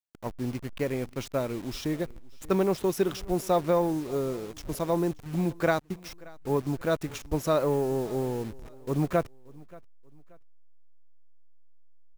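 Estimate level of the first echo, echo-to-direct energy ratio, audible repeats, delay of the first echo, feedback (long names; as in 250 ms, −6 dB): −23.0 dB, −22.5 dB, 2, 580 ms, 36%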